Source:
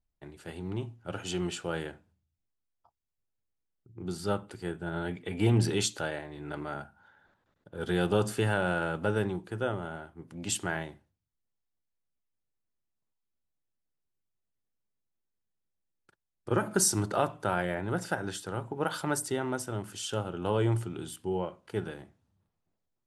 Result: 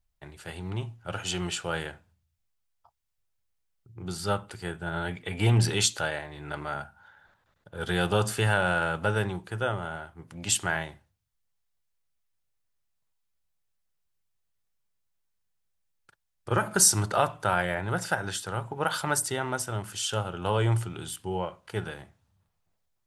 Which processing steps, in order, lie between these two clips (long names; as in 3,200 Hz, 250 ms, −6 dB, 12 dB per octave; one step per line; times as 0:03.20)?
parametric band 290 Hz −10.5 dB 1.6 octaves
level +6.5 dB